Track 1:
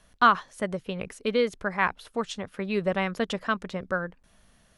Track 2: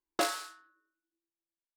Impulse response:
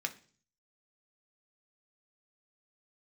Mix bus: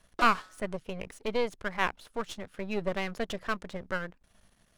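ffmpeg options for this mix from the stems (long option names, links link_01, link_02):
-filter_complex "[0:a]aeval=exprs='if(lt(val(0),0),0.251*val(0),val(0))':channel_layout=same,volume=-1.5dB[link_01];[1:a]lowpass=frequency=2900:poles=1,volume=-5.5dB[link_02];[link_01][link_02]amix=inputs=2:normalize=0"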